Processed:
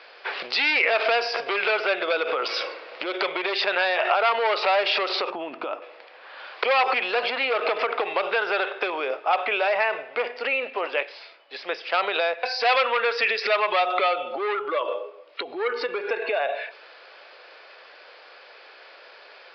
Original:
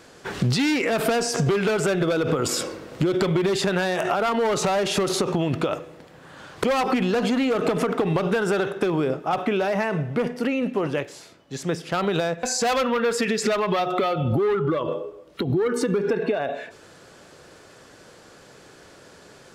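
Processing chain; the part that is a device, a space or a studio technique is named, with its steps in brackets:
0:05.30–0:05.82: octave-band graphic EQ 250/500/2,000/4,000/8,000 Hz +10/−8/−9/−10/−11 dB
musical greeting card (downsampling to 11,025 Hz; high-pass filter 530 Hz 24 dB per octave; parametric band 2,400 Hz +7.5 dB 0.45 octaves)
level +2.5 dB

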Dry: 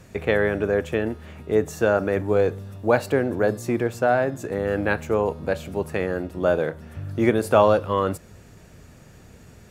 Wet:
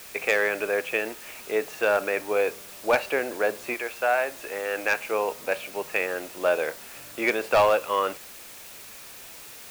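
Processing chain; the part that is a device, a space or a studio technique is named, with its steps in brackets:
0:03.73–0:05.10: high-pass filter 730 Hz → 240 Hz 6 dB per octave
drive-through speaker (band-pass filter 540–3,800 Hz; parametric band 2,500 Hz +11.5 dB 0.48 octaves; hard clipping −13.5 dBFS, distortion −17 dB; white noise bed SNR 17 dB)

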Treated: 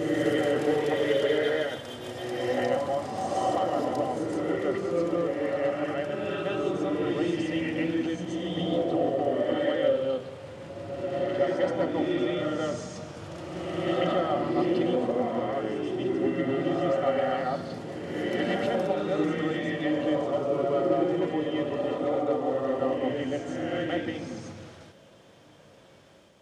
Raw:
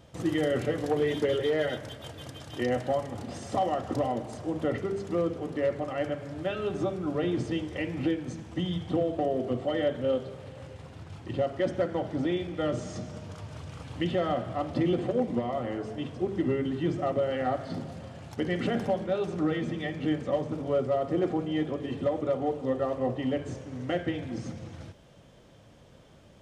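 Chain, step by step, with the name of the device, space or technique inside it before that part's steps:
ghost voice (reversed playback; convolution reverb RT60 1.9 s, pre-delay 109 ms, DRR −2.5 dB; reversed playback; high-pass filter 340 Hz 6 dB per octave)

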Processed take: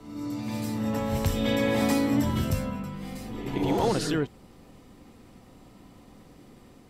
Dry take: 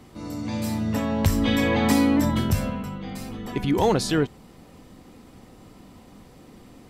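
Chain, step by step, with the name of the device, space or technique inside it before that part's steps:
reverse reverb (reversed playback; convolution reverb RT60 0.80 s, pre-delay 75 ms, DRR 3 dB; reversed playback)
level −5.5 dB

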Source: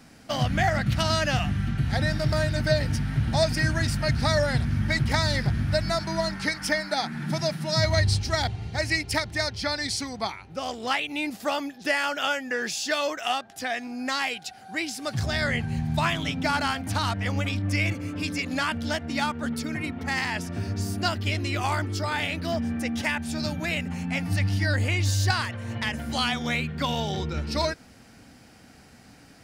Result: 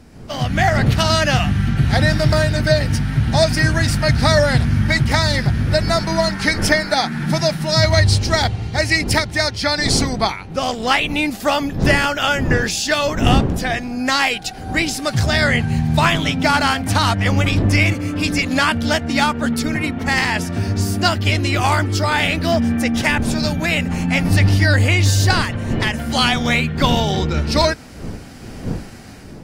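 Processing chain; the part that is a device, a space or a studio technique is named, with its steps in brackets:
smartphone video outdoors (wind on the microphone 230 Hz −36 dBFS; automatic gain control gain up to 12 dB; AAC 64 kbit/s 44,100 Hz)

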